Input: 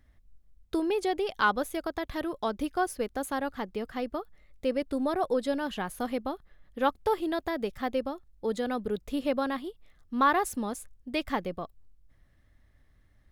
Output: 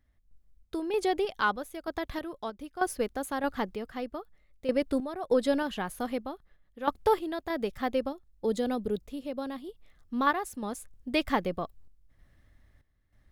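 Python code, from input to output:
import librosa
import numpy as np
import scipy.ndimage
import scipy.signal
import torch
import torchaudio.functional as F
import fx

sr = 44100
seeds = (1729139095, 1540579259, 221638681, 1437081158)

y = fx.dynamic_eq(x, sr, hz=1500.0, q=0.74, threshold_db=-46.0, ratio=4.0, max_db=-8, at=(8.08, 10.27))
y = fx.tremolo_random(y, sr, seeds[0], hz=3.2, depth_pct=80)
y = y * librosa.db_to_amplitude(3.5)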